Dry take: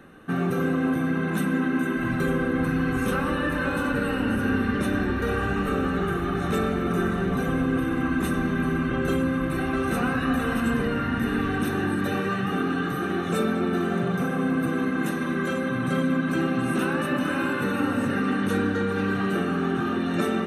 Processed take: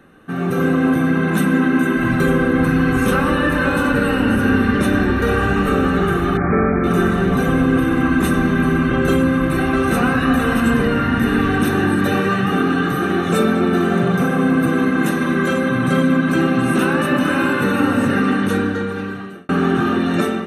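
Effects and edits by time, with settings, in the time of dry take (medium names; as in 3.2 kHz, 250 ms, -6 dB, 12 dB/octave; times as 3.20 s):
6.37–6.84 s: brick-wall FIR low-pass 2.5 kHz
18.20–19.49 s: fade out
whole clip: level rider gain up to 9 dB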